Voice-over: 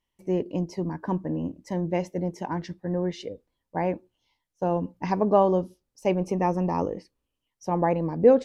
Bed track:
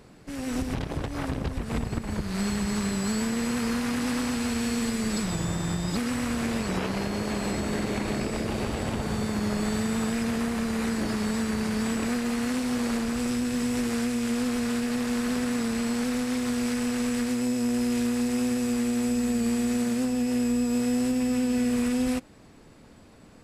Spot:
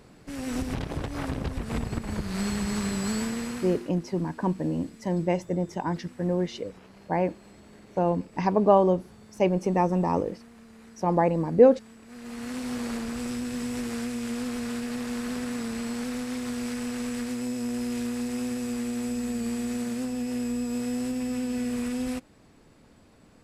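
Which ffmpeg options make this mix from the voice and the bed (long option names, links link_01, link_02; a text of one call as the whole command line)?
ffmpeg -i stem1.wav -i stem2.wav -filter_complex "[0:a]adelay=3350,volume=1dB[link_01];[1:a]volume=17dB,afade=type=out:start_time=3.16:duration=0.75:silence=0.0841395,afade=type=in:start_time=12.07:duration=0.6:silence=0.125893[link_02];[link_01][link_02]amix=inputs=2:normalize=0" out.wav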